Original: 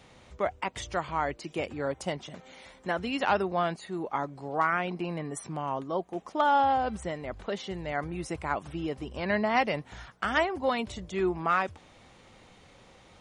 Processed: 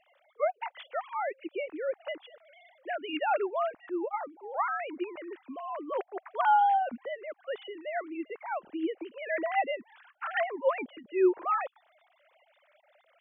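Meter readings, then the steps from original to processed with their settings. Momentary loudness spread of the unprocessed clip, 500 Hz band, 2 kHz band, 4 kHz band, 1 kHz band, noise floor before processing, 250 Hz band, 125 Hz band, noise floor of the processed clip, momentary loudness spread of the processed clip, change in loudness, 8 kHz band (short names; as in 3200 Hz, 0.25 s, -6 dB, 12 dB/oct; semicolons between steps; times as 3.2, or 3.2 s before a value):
10 LU, -0.5 dB, -4.0 dB, -7.0 dB, -1.0 dB, -56 dBFS, -3.0 dB, under -30 dB, -69 dBFS, 13 LU, -1.5 dB, under -30 dB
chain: sine-wave speech; gain -1.5 dB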